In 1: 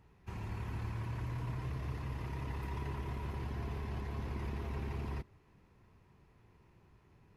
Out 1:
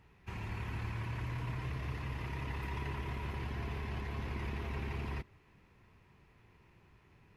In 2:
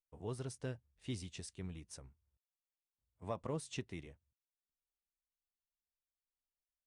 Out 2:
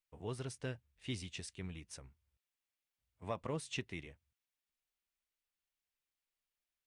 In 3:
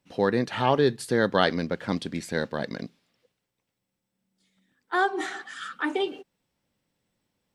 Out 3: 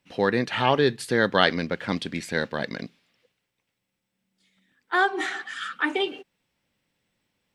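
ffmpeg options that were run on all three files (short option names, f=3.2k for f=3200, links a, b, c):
-af "equalizer=f=2.4k:t=o:w=1.5:g=7"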